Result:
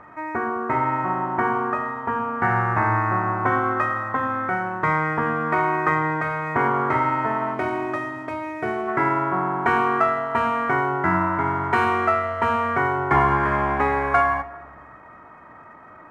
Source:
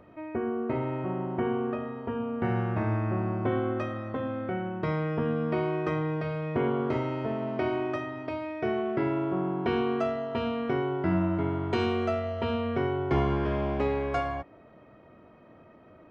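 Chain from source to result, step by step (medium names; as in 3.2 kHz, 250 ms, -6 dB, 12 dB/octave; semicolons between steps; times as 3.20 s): median filter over 9 samples; high-order bell 1.3 kHz +15.5 dB, from 7.53 s +8 dB, from 8.87 s +15.5 dB; simulated room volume 1300 m³, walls mixed, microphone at 0.36 m; trim +1.5 dB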